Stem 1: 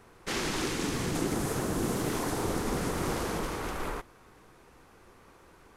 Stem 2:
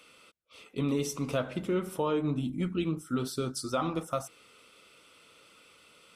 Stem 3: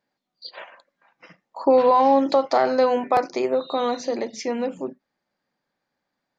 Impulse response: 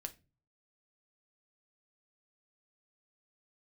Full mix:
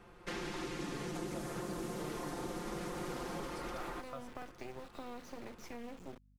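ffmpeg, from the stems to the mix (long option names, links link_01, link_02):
-filter_complex "[0:a]aecho=1:1:5.7:0.83,volume=-4dB[link_01];[1:a]volume=-12.5dB[link_02];[2:a]equalizer=frequency=125:width_type=o:width=1:gain=3,equalizer=frequency=250:width_type=o:width=1:gain=-4,equalizer=frequency=500:width_type=o:width=1:gain=-11,equalizer=frequency=1000:width_type=o:width=1:gain=-11,equalizer=frequency=4000:width_type=o:width=1:gain=-9,acompressor=threshold=-35dB:ratio=6,acrusher=bits=5:dc=4:mix=0:aa=0.000001,adelay=1250,volume=-4dB[link_03];[link_01][link_02][link_03]amix=inputs=3:normalize=0,highshelf=frequency=4800:gain=-10.5,acrossover=split=230|3200[link_04][link_05][link_06];[link_04]acompressor=threshold=-48dB:ratio=4[link_07];[link_05]acompressor=threshold=-41dB:ratio=4[link_08];[link_06]acompressor=threshold=-52dB:ratio=4[link_09];[link_07][link_08][link_09]amix=inputs=3:normalize=0,aeval=exprs='val(0)+0.000562*(sin(2*PI*50*n/s)+sin(2*PI*2*50*n/s)/2+sin(2*PI*3*50*n/s)/3+sin(2*PI*4*50*n/s)/4+sin(2*PI*5*50*n/s)/5)':channel_layout=same"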